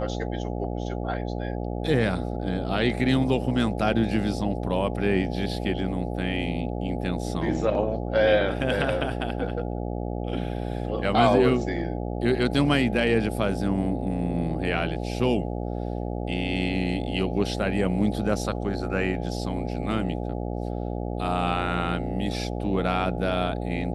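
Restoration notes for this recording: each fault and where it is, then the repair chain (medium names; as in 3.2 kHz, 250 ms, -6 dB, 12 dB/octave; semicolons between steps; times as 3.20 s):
buzz 60 Hz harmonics 14 -30 dBFS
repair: de-hum 60 Hz, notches 14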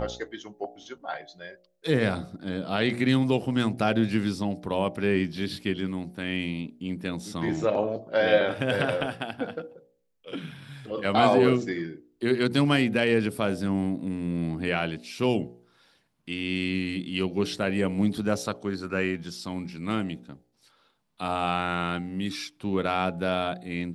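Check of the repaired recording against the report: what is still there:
nothing left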